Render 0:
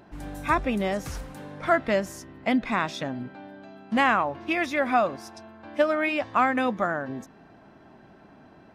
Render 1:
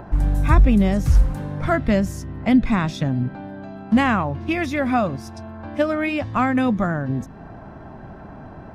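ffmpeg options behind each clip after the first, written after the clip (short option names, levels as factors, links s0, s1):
-filter_complex "[0:a]bass=f=250:g=15,treble=f=4000:g=3,acrossover=split=470|1600[s0][s1][s2];[s1]acompressor=mode=upward:threshold=0.0282:ratio=2.5[s3];[s0][s3][s2]amix=inputs=3:normalize=0,lowshelf=f=100:g=10.5"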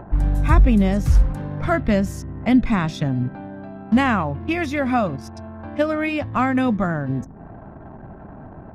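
-af "anlmdn=0.398"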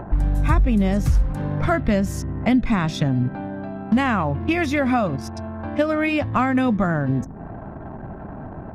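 -af "acompressor=threshold=0.0794:ratio=2.5,volume=1.68"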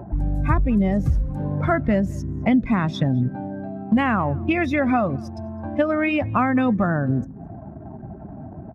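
-filter_complex "[0:a]highpass=54,afftdn=nr=14:nf=-30,asplit=2[s0][s1];[s1]adelay=209.9,volume=0.0501,highshelf=f=4000:g=-4.72[s2];[s0][s2]amix=inputs=2:normalize=0"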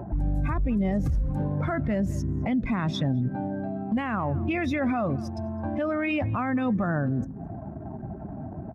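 -af "alimiter=limit=0.112:level=0:latency=1:release=46"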